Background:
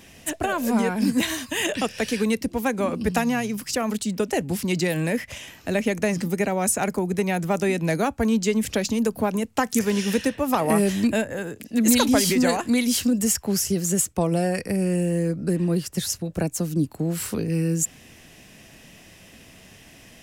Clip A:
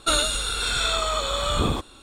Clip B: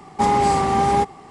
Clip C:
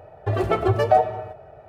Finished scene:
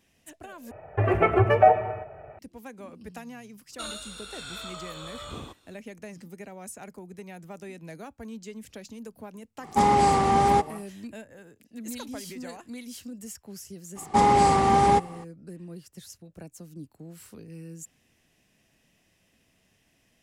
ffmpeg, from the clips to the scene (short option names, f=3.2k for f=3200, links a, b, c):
-filter_complex "[2:a]asplit=2[a][b];[0:a]volume=-19dB[c];[3:a]highshelf=f=3.1k:t=q:w=3:g=-9.5[d];[1:a]highpass=66[e];[c]asplit=2[f][g];[f]atrim=end=0.714[h];[d]atrim=end=1.68,asetpts=PTS-STARTPTS,volume=-0.5dB[i];[g]atrim=start=2.386[j];[e]atrim=end=2.02,asetpts=PTS-STARTPTS,volume=-15.5dB,afade=t=in:d=0.004:c=hsin,afade=t=out:st=2.016:d=0.004:c=hsin,adelay=3720[k];[a]atrim=end=1.3,asetpts=PTS-STARTPTS,volume=-2.5dB,afade=t=in:d=0.1,afade=t=out:st=1.2:d=0.1,adelay=9570[l];[b]atrim=end=1.3,asetpts=PTS-STARTPTS,volume=-1.5dB,afade=t=in:d=0.02,afade=t=out:st=1.28:d=0.02,adelay=13950[m];[h][i]acrossfade=d=0.004:c1=hsin:c2=hsin[n];[n][j]acrossfade=d=0.004:c1=hsin:c2=hsin[o];[o][k][l][m]amix=inputs=4:normalize=0"